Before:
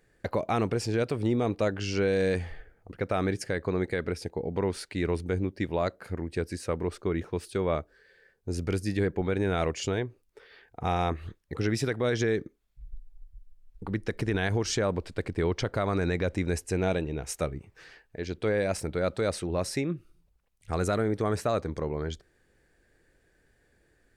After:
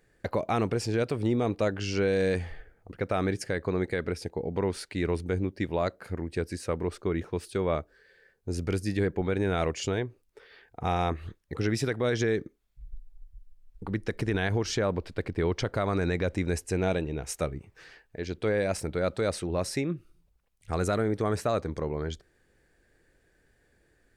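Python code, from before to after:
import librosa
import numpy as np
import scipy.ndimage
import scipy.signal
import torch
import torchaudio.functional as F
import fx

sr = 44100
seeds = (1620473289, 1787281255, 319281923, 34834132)

y = fx.peak_eq(x, sr, hz=8100.0, db=-6.0, octaves=0.81, at=(14.43, 15.47))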